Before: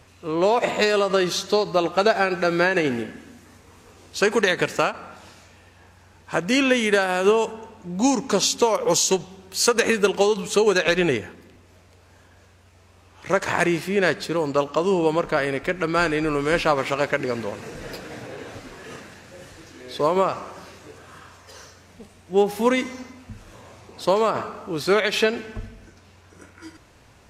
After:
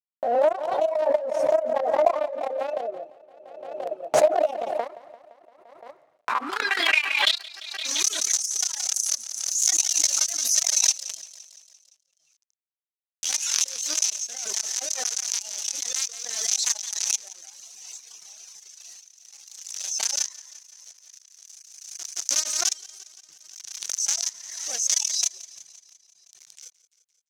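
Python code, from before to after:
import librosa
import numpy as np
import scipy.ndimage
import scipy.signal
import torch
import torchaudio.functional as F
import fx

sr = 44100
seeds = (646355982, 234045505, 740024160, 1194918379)

p1 = fx.pitch_heads(x, sr, semitones=7.5)
p2 = fx.quant_companded(p1, sr, bits=2)
p3 = fx.dereverb_blind(p2, sr, rt60_s=1.2)
p4 = fx.filter_sweep_bandpass(p3, sr, from_hz=620.0, to_hz=6100.0, start_s=5.92, end_s=7.69, q=7.8)
p5 = fx.dynamic_eq(p4, sr, hz=8500.0, q=0.77, threshold_db=-42.0, ratio=4.0, max_db=3)
p6 = p5 + fx.echo_feedback(p5, sr, ms=172, feedback_pct=59, wet_db=-16, dry=0)
p7 = fx.transient(p6, sr, attack_db=1, sustain_db=-6)
p8 = fx.pre_swell(p7, sr, db_per_s=40.0)
y = p8 * librosa.db_to_amplitude(3.0)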